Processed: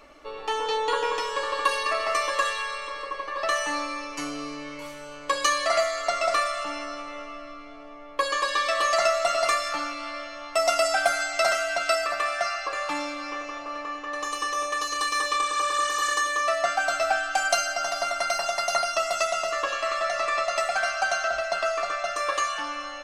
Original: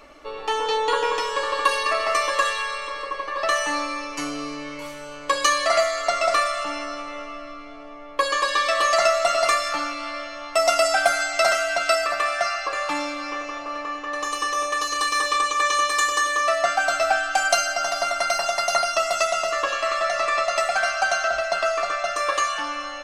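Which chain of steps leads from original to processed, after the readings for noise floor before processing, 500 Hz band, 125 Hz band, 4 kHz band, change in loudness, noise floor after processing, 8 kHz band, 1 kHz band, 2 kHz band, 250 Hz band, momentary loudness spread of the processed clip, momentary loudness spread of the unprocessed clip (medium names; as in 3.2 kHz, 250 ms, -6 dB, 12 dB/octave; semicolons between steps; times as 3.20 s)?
-37 dBFS, -3.5 dB, no reading, -3.5 dB, -3.5 dB, -41 dBFS, -3.5 dB, -3.5 dB, -3.5 dB, -3.5 dB, 11 LU, 11 LU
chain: spectral replace 15.45–16.12 s, 1.2–11 kHz both; trim -3.5 dB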